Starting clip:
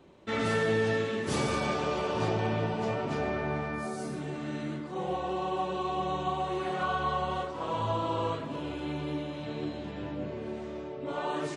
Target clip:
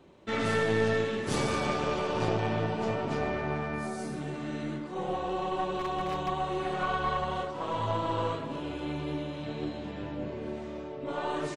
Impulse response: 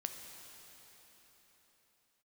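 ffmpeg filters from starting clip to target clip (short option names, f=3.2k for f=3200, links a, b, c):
-filter_complex "[0:a]asplit=2[a][b];[b]adelay=262.4,volume=-15dB,highshelf=f=4k:g=-5.9[c];[a][c]amix=inputs=2:normalize=0,asplit=3[d][e][f];[d]afade=t=out:st=5.74:d=0.02[g];[e]aeval=exprs='0.0562*(abs(mod(val(0)/0.0562+3,4)-2)-1)':c=same,afade=t=in:st=5.74:d=0.02,afade=t=out:st=6.27:d=0.02[h];[f]afade=t=in:st=6.27:d=0.02[i];[g][h][i]amix=inputs=3:normalize=0,aeval=exprs='0.15*(cos(1*acos(clip(val(0)/0.15,-1,1)))-cos(1*PI/2))+0.0422*(cos(2*acos(clip(val(0)/0.15,-1,1)))-cos(2*PI/2))':c=same"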